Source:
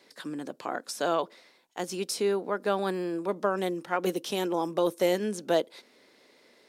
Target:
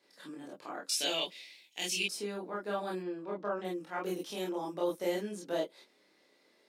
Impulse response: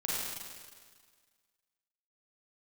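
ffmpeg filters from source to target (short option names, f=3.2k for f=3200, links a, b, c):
-filter_complex "[0:a]asettb=1/sr,asplit=3[a][b][c];[a]atrim=end=0.894[d];[b]atrim=start=0.89:end=2.03,asetpts=PTS-STARTPTS,afade=t=in:d=0.004:c=qsin,afade=t=out:st=1.136:d=0.004:c=qsin,highshelf=f=1.8k:t=q:w=3:g=12.5[e];[c]atrim=start=2.026[f];[d][e]acrossfade=d=0.004:c1=hsin:c2=qsin[g];[g][f]acrossfade=d=0.004:c1=qsin:c2=hsin,asettb=1/sr,asplit=3[h][i][j];[h]atrim=end=2.984[k];[i]atrim=start=2.98:end=3.65,asetpts=PTS-STARTPTS,afade=t=in:d=0.004:c=qsin,afade=t=out:st=0.666:d=0.004:c=qsin,lowpass=4.1k[l];[j]atrim=start=3.646[m];[k][l]acrossfade=d=0.004:c1=hsin:c2=qsin[n];[n][m]acrossfade=d=0.004:c1=qsin:c2=hsin[o];[1:a]atrim=start_sample=2205,atrim=end_sample=4410,asetrate=79380,aresample=44100[p];[o][p]afir=irnorm=-1:irlink=0,volume=-6dB"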